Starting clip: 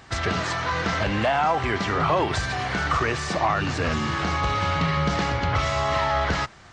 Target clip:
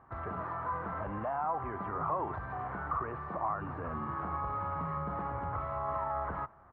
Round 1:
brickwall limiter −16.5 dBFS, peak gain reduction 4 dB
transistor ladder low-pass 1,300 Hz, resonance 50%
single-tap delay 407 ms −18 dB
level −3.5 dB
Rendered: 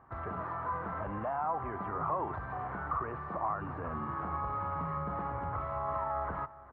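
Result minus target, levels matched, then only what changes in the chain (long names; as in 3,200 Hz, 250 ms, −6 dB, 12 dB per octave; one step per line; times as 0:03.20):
echo-to-direct +10 dB
change: single-tap delay 407 ms −28 dB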